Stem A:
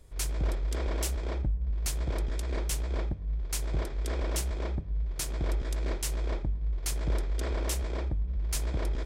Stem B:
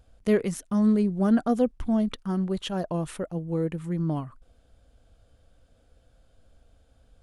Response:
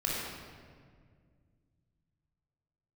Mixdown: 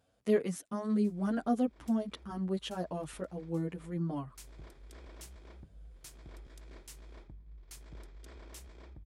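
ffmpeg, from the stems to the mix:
-filter_complex "[0:a]equalizer=f=550:w=1.5:g=-5,adelay=850,volume=0.15[s0];[1:a]highpass=120,asplit=2[s1][s2];[s2]adelay=9.1,afreqshift=2.5[s3];[s1][s3]amix=inputs=2:normalize=1,volume=0.668,asplit=2[s4][s5];[s5]apad=whole_len=436682[s6];[s0][s6]sidechaincompress=threshold=0.00562:ratio=4:attack=6:release=213[s7];[s7][s4]amix=inputs=2:normalize=0,lowshelf=f=74:g=-7"

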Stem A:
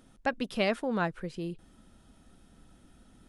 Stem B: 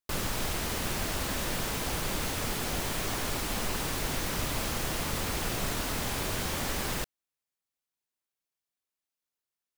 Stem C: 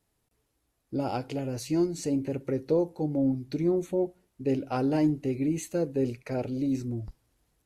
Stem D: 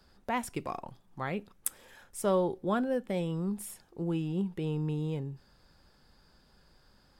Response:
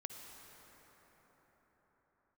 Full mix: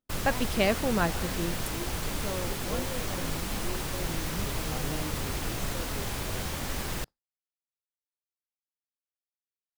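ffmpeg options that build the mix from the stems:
-filter_complex "[0:a]volume=1.33[s0];[1:a]acrossover=split=160[s1][s2];[s2]acompressor=threshold=0.0126:ratio=2[s3];[s1][s3]amix=inputs=2:normalize=0,volume=1.26[s4];[2:a]highpass=410,volume=0.266[s5];[3:a]volume=0.335[s6];[s0][s4][s5][s6]amix=inputs=4:normalize=0,agate=range=0.0224:threshold=0.0251:ratio=3:detection=peak"

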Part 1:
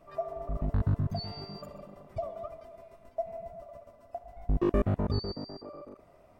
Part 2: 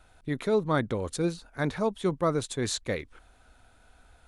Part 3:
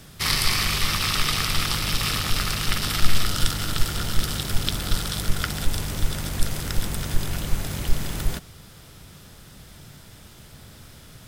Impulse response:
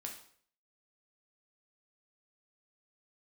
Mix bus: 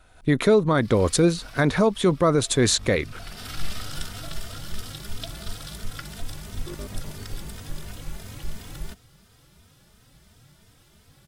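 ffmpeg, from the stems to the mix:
-filter_complex "[0:a]adelay=2050,volume=0.237[s0];[1:a]bandreject=f=840:w=12,dynaudnorm=f=150:g=3:m=3.55,volume=1.33,asplit=2[s1][s2];[2:a]equalizer=f=14000:w=4.8:g=-7,asplit=2[s3][s4];[s4]adelay=3,afreqshift=2.9[s5];[s3][s5]amix=inputs=2:normalize=1,adelay=550,volume=0.447[s6];[s2]apad=whole_len=521621[s7];[s6][s7]sidechaincompress=threshold=0.0398:ratio=16:attack=25:release=558[s8];[s0][s1][s8]amix=inputs=3:normalize=0,alimiter=limit=0.316:level=0:latency=1:release=126"

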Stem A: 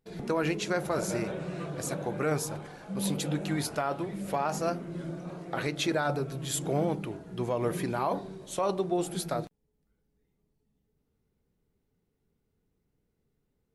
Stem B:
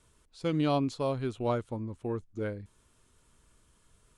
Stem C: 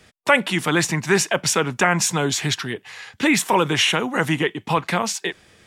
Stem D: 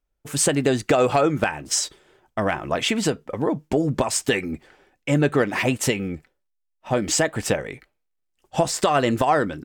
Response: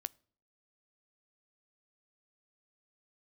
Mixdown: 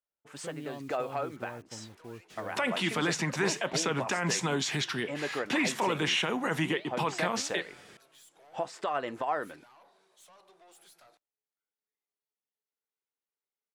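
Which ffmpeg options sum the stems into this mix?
-filter_complex "[0:a]highpass=930,acompressor=threshold=0.0126:ratio=6,aeval=exprs='(tanh(178*val(0)+0.3)-tanh(0.3))/178':c=same,adelay=1700,volume=0.266,asplit=2[s0][s1];[s1]volume=0.355[s2];[1:a]alimiter=limit=0.0668:level=0:latency=1,acrusher=bits=7:mix=0:aa=0.000001,volume=0.266,asplit=2[s3][s4];[2:a]acrossover=split=6700[s5][s6];[s6]acompressor=threshold=0.00794:ratio=4:attack=1:release=60[s7];[s5][s7]amix=inputs=2:normalize=0,alimiter=limit=0.266:level=0:latency=1:release=23,flanger=delay=5.4:depth=8:regen=87:speed=1.3:shape=sinusoidal,adelay=2300,volume=1.12,asplit=2[s8][s9];[s9]volume=0.376[s10];[3:a]bandpass=f=1100:t=q:w=0.62:csg=0,volume=0.299[s11];[s4]apad=whole_len=425165[s12];[s11][s12]sidechaincompress=threshold=0.00501:ratio=8:attack=47:release=130[s13];[s0][s3][s8]amix=inputs=3:normalize=0,highpass=f=88:w=0.5412,highpass=f=88:w=1.3066,alimiter=level_in=1.06:limit=0.0631:level=0:latency=1:release=236,volume=0.944,volume=1[s14];[4:a]atrim=start_sample=2205[s15];[s2][s10]amix=inputs=2:normalize=0[s16];[s16][s15]afir=irnorm=-1:irlink=0[s17];[s13][s14][s17]amix=inputs=3:normalize=0"

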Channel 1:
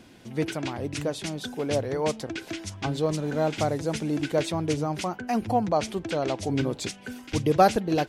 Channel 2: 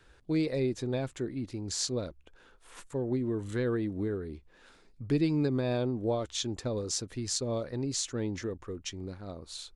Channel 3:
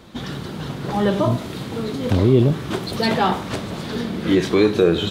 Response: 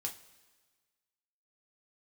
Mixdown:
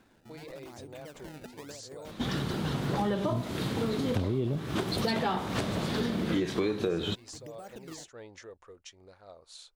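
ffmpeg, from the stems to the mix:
-filter_complex "[0:a]acompressor=threshold=0.0501:ratio=6,acrusher=samples=23:mix=1:aa=0.000001:lfo=1:lforange=36.8:lforate=0.89,volume=0.237[s0];[1:a]lowshelf=f=400:t=q:w=1.5:g=-12,volume=0.447[s1];[2:a]adelay=2050,volume=0.891[s2];[s0][s1]amix=inputs=2:normalize=0,aeval=exprs='0.0473*(abs(mod(val(0)/0.0473+3,4)-2)-1)':c=same,alimiter=level_in=3.76:limit=0.0631:level=0:latency=1:release=157,volume=0.266,volume=1[s3];[s2][s3]amix=inputs=2:normalize=0,acompressor=threshold=0.0501:ratio=8"

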